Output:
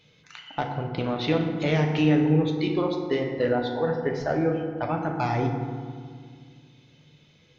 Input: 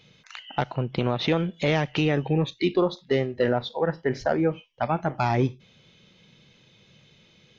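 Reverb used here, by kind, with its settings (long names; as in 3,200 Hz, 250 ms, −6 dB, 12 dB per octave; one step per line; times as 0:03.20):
feedback delay network reverb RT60 1.9 s, low-frequency decay 1.4×, high-frequency decay 0.45×, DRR 1.5 dB
level −4 dB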